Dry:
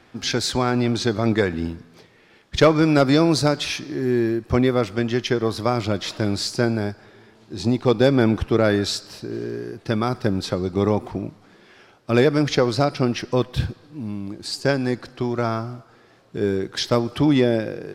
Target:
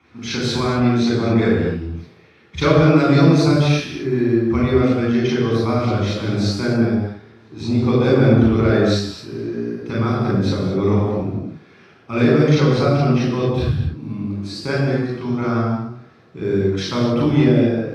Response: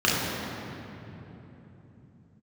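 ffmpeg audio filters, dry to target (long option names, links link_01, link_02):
-filter_complex "[1:a]atrim=start_sample=2205,afade=type=out:start_time=0.3:duration=0.01,atrim=end_sample=13671,asetrate=37485,aresample=44100[link_01];[0:a][link_01]afir=irnorm=-1:irlink=0,volume=-16.5dB"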